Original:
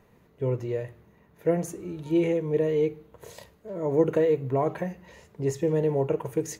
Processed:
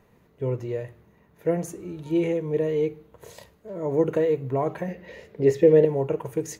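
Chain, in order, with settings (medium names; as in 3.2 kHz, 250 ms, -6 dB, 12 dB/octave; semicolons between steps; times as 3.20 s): 4.88–5.85 s: graphic EQ 250/500/1000/2000/4000/8000 Hz +4/+11/-5/+8/+4/-7 dB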